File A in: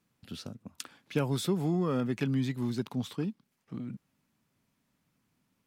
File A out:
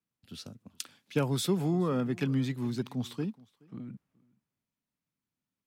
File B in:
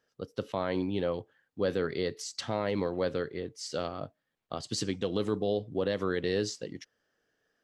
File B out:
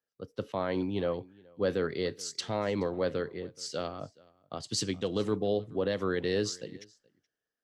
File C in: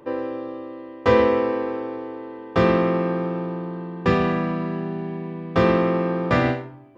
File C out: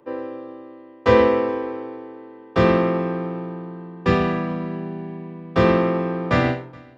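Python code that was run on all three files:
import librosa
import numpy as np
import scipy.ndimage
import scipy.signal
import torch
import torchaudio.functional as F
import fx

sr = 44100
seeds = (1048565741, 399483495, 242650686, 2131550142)

p1 = x + fx.echo_single(x, sr, ms=425, db=-21.0, dry=0)
y = fx.band_widen(p1, sr, depth_pct=40)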